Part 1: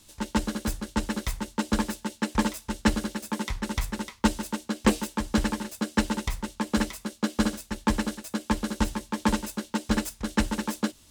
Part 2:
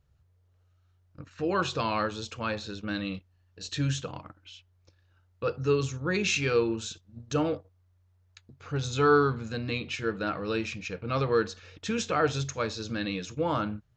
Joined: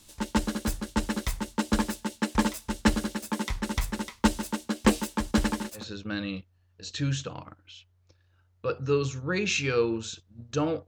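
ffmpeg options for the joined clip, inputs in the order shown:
ffmpeg -i cue0.wav -i cue1.wav -filter_complex "[0:a]asettb=1/sr,asplit=3[link_01][link_02][link_03];[link_01]atrim=end=5.314[link_04];[link_02]atrim=start=5.31:end=5.85,asetpts=PTS-STARTPTS,afade=type=in:duration=0.004:curve=qsin,afade=type=out:start_time=0.536:duration=0.004:curve=qsin,agate=range=-6dB:threshold=-42dB:ratio=16:release=100:detection=peak[link_05];[link_03]atrim=start=5.846[link_06];[link_04][link_05]acrossfade=duration=0.004:curve1=hsin:curve2=qsin[link_07];[link_07][link_06]acrossfade=duration=0.004:curve1=qsin:curve2=hsin,apad=whole_dur=10.87,atrim=end=10.87,atrim=end=5.85,asetpts=PTS-STARTPTS[link_08];[1:a]atrim=start=2.51:end=7.65,asetpts=PTS-STARTPTS[link_09];[link_08][link_09]acrossfade=duration=0.12:curve1=tri:curve2=tri" out.wav

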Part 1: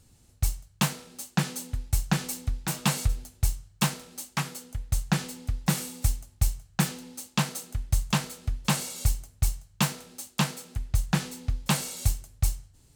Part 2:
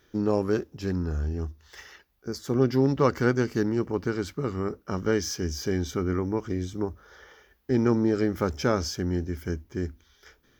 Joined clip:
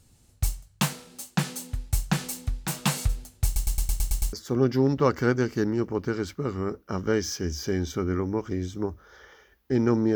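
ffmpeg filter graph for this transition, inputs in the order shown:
ffmpeg -i cue0.wav -i cue1.wav -filter_complex "[0:a]apad=whole_dur=10.15,atrim=end=10.15,asplit=8[link_01][link_02][link_03][link_04][link_05][link_06][link_07][link_08];[link_01]atrim=end=3.562[link_09];[link_02]atrim=start=3.448:end=3.562[link_10];[link_03]atrim=start=3.448:end=3.562[link_11];[link_04]atrim=start=3.448:end=3.562[link_12];[link_05]atrim=start=3.448:end=3.562[link_13];[link_06]atrim=start=3.448:end=3.562[link_14];[link_07]atrim=start=3.448:end=3.562[link_15];[link_08]atrim=start=3.448:end=3.562[link_16];[1:a]atrim=start=2.318:end=8.14[link_17];[link_09][link_10]acrossfade=duration=0.004:curve1=hsin:curve2=hsin[link_18];[link_18][link_11]acrossfade=duration=0.004:curve1=hsin:curve2=hsin[link_19];[link_19][link_12]acrossfade=duration=0.004:curve1=hsin:curve2=hsin[link_20];[link_20][link_13]acrossfade=duration=0.004:curve1=hsin:curve2=hsin[link_21];[link_21][link_14]acrossfade=duration=0.004:curve1=hsin:curve2=hsin[link_22];[link_22][link_15]acrossfade=duration=0.004:curve1=hsin:curve2=hsin[link_23];[link_23][link_16]acrossfade=duration=0.004:curve1=hsin:curve2=hsin[link_24];[link_24][link_17]acrossfade=duration=0.004:curve1=hsin:curve2=hsin" out.wav

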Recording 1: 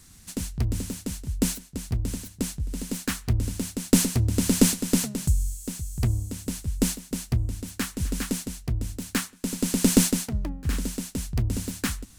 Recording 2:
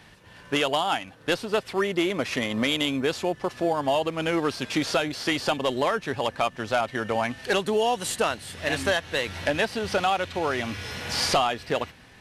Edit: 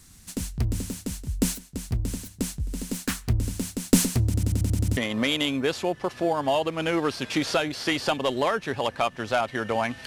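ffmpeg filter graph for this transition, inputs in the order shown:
ffmpeg -i cue0.wav -i cue1.wav -filter_complex "[0:a]apad=whole_dur=10.06,atrim=end=10.06,asplit=8[link_01][link_02][link_03][link_04][link_05][link_06][link_07][link_08];[link_01]atrim=end=4.342[link_09];[link_02]atrim=start=4.248:end=4.342[link_10];[link_03]atrim=start=4.248:end=4.342[link_11];[link_04]atrim=start=4.248:end=4.342[link_12];[link_05]atrim=start=4.248:end=4.342[link_13];[link_06]atrim=start=4.248:end=4.342[link_14];[link_07]atrim=start=4.248:end=4.342[link_15];[link_08]atrim=start=4.248:end=4.342[link_16];[1:a]atrim=start=2.368:end=7.46[link_17];[link_09][link_10]acrossfade=duration=0.004:curve1=hsin:curve2=hsin[link_18];[link_18][link_11]acrossfade=duration=0.004:curve1=hsin:curve2=hsin[link_19];[link_19][link_12]acrossfade=duration=0.004:curve1=hsin:curve2=hsin[link_20];[link_20][link_13]acrossfade=duration=0.004:curve1=hsin:curve2=hsin[link_21];[link_21][link_14]acrossfade=duration=0.004:curve1=hsin:curve2=hsin[link_22];[link_22][link_15]acrossfade=duration=0.004:curve1=hsin:curve2=hsin[link_23];[link_23][link_16]acrossfade=duration=0.004:curve1=hsin:curve2=hsin[link_24];[link_24][link_17]acrossfade=duration=0.004:curve1=hsin:curve2=hsin" out.wav

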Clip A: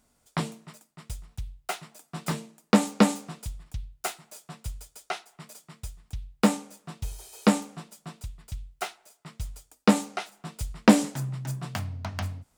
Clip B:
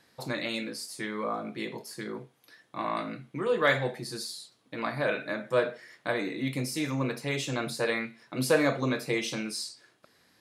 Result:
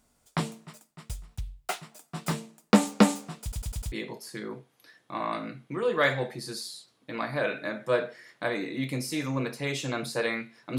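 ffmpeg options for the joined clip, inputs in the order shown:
ffmpeg -i cue0.wav -i cue1.wav -filter_complex "[0:a]apad=whole_dur=10.78,atrim=end=10.78,asplit=5[link_01][link_02][link_03][link_04][link_05];[link_01]atrim=end=3.522[link_06];[link_02]atrim=start=3.418:end=3.522[link_07];[link_03]atrim=start=3.418:end=3.522[link_08];[link_04]atrim=start=3.418:end=3.522[link_09];[link_05]atrim=start=3.418:end=3.522[link_10];[1:a]atrim=start=1.558:end=8.42[link_11];[link_06][link_07]acrossfade=duration=0.004:curve1=hsin:curve2=hsin[link_12];[link_12][link_08]acrossfade=duration=0.004:curve1=hsin:curve2=hsin[link_13];[link_13][link_09]acrossfade=duration=0.004:curve1=hsin:curve2=hsin[link_14];[link_14][link_10]acrossfade=duration=0.004:curve1=hsin:curve2=hsin[link_15];[link_15][link_11]acrossfade=duration=0.004:curve1=hsin:curve2=hsin" out.wav

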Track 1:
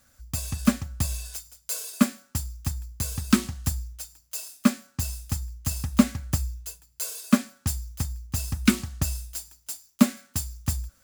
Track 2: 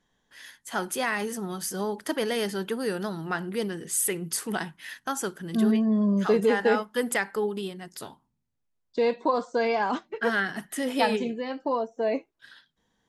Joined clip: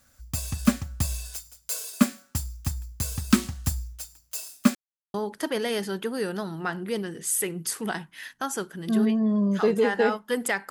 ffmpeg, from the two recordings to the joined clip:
ffmpeg -i cue0.wav -i cue1.wav -filter_complex "[0:a]apad=whole_dur=10.7,atrim=end=10.7,asplit=2[link_01][link_02];[link_01]atrim=end=4.75,asetpts=PTS-STARTPTS,afade=type=out:start_time=4.746:duration=0.004:curve=hsin[link_03];[link_02]atrim=start=4.75:end=5.14,asetpts=PTS-STARTPTS,volume=0[link_04];[1:a]atrim=start=1.8:end=7.36,asetpts=PTS-STARTPTS,afade=type=in:duration=0.004:curve=hsin[link_05];[link_03][link_04][link_05]concat=n=3:v=0:a=1" out.wav

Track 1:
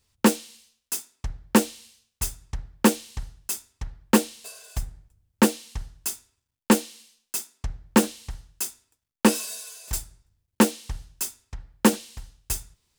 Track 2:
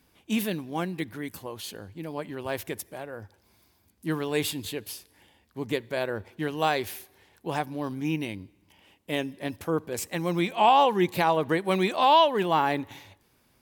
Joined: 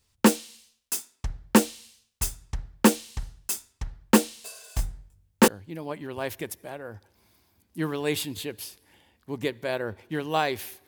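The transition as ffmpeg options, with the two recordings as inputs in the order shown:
ffmpeg -i cue0.wav -i cue1.wav -filter_complex "[0:a]asettb=1/sr,asplit=3[link_01][link_02][link_03];[link_01]atrim=end=4.764[link_04];[link_02]atrim=start=4.76:end=5.48,asetpts=PTS-STARTPTS,afade=type=in:duration=0.004:curve=qsin,afade=type=out:start_time=0.716:duration=0.004:curve=qsin,asplit=2[link_05][link_06];[link_06]adelay=21,volume=-3dB[link_07];[link_05][link_07]amix=inputs=2:normalize=0,atrim=end_sample=31752[link_08];[link_03]atrim=start=5.476[link_09];[link_04][link_08]acrossfade=duration=0.004:curve1=hsin:curve2=qsin[link_10];[link_10][link_09]acrossfade=duration=0.004:curve1=qsin:curve2=hsin,apad=whole_dur=10.87,atrim=end=10.87,atrim=end=5.482[link_11];[1:a]atrim=start=1.758:end=7.15[link_12];[link_11][link_12]acrossfade=duration=0.004:curve1=hsin:curve2=hsin" out.wav

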